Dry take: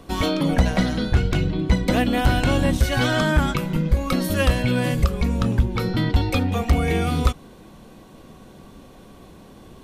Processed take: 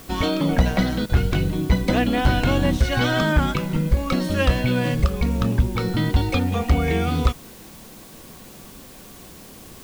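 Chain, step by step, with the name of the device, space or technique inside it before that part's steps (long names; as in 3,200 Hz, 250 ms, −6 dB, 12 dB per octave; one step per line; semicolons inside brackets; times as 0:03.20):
worn cassette (low-pass filter 6,300 Hz; tape wow and flutter 20 cents; tape dropouts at 0:01.06, 33 ms −16 dB; white noise bed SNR 25 dB)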